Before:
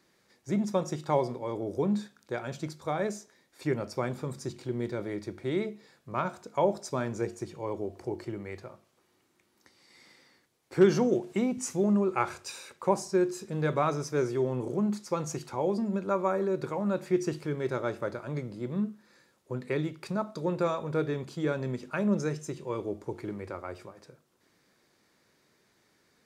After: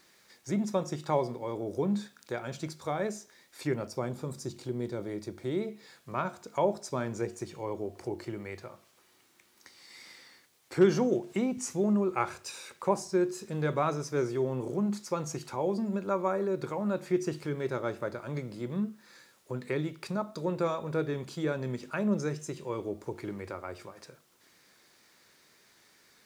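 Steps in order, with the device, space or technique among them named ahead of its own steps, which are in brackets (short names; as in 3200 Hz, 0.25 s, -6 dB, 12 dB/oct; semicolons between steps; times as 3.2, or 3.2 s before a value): noise-reduction cassette on a plain deck (mismatched tape noise reduction encoder only; wow and flutter 26 cents; white noise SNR 41 dB); 3.87–5.68 bell 2000 Hz -6 dB 1.6 oct; gain -1.5 dB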